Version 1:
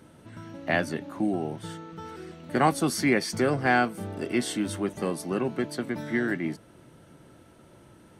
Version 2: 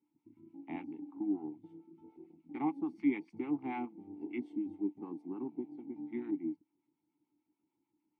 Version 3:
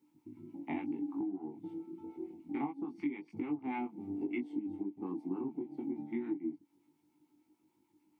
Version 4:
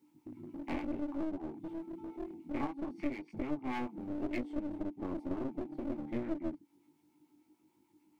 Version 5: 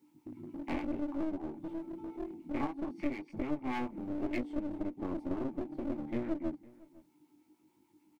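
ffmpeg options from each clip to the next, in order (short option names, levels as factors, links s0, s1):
-filter_complex "[0:a]acrossover=split=720[s0][s1];[s0]aeval=exprs='val(0)*(1-0.7/2+0.7/2*cos(2*PI*6.8*n/s))':c=same[s2];[s1]aeval=exprs='val(0)*(1-0.7/2-0.7/2*cos(2*PI*6.8*n/s))':c=same[s3];[s2][s3]amix=inputs=2:normalize=0,afwtdn=0.0141,asplit=3[s4][s5][s6];[s4]bandpass=f=300:t=q:w=8,volume=1[s7];[s5]bandpass=f=870:t=q:w=8,volume=0.501[s8];[s6]bandpass=f=2240:t=q:w=8,volume=0.355[s9];[s7][s8][s9]amix=inputs=3:normalize=0,volume=1.12"
-af "acompressor=threshold=0.00708:ratio=16,flanger=delay=19.5:depth=2.4:speed=0.26,volume=4.22"
-af "aeval=exprs='clip(val(0),-1,0.00562)':c=same,volume=1.41"
-filter_complex "[0:a]asplit=2[s0][s1];[s1]adelay=507.3,volume=0.0794,highshelf=f=4000:g=-11.4[s2];[s0][s2]amix=inputs=2:normalize=0,volume=1.19"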